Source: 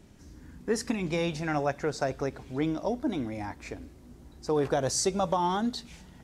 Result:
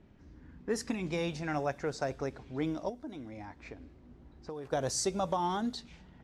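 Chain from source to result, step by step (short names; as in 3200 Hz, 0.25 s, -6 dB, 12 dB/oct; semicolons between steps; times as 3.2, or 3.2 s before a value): low-pass opened by the level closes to 2500 Hz, open at -24.5 dBFS; 2.89–4.73 compressor 3:1, threshold -38 dBFS, peak gain reduction 12 dB; gain -4.5 dB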